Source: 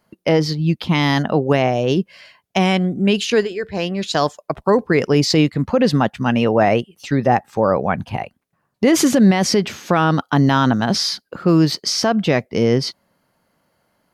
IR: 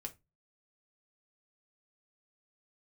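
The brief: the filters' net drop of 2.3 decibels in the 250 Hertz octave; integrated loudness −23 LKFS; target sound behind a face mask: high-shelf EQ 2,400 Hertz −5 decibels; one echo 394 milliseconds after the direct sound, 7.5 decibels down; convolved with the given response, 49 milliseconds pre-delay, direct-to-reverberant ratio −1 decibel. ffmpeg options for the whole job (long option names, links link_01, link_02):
-filter_complex "[0:a]equalizer=frequency=250:width_type=o:gain=-3,aecho=1:1:394:0.422,asplit=2[link_01][link_02];[1:a]atrim=start_sample=2205,adelay=49[link_03];[link_02][link_03]afir=irnorm=-1:irlink=0,volume=4dB[link_04];[link_01][link_04]amix=inputs=2:normalize=0,highshelf=frequency=2400:gain=-5,volume=-8dB"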